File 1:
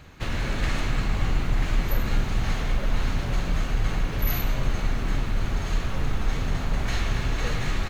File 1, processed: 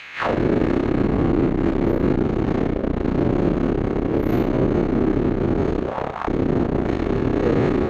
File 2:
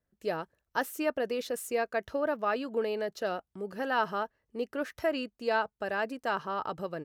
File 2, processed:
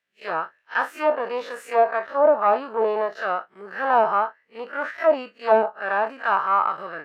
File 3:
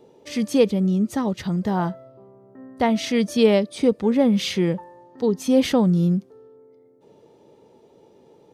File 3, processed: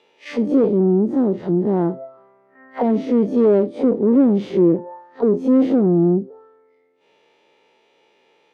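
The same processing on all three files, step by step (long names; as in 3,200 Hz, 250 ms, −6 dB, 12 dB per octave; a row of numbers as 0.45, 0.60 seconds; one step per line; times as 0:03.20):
spectrum smeared in time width 83 ms
tube saturation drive 23 dB, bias 0.6
envelope filter 340–2,600 Hz, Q 2.4, down, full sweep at −27 dBFS
normalise the peak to −6 dBFS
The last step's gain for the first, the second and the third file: +26.0, +23.0, +17.5 decibels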